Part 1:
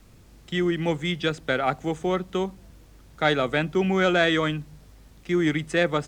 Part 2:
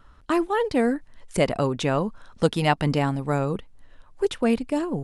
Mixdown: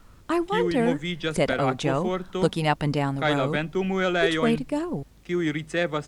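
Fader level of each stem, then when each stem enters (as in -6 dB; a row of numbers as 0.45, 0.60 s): -3.0, -2.0 dB; 0.00, 0.00 s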